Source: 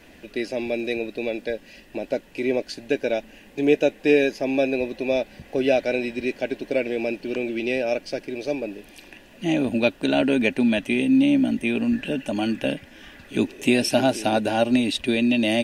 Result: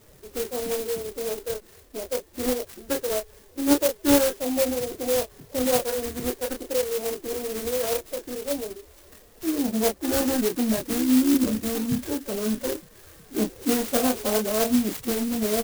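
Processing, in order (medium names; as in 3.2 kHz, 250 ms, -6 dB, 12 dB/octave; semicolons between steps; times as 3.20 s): peaking EQ 5.5 kHz -8 dB 1.3 oct; formant-preserving pitch shift +11.5 st; doubling 28 ms -5.5 dB; sampling jitter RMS 0.13 ms; trim -3 dB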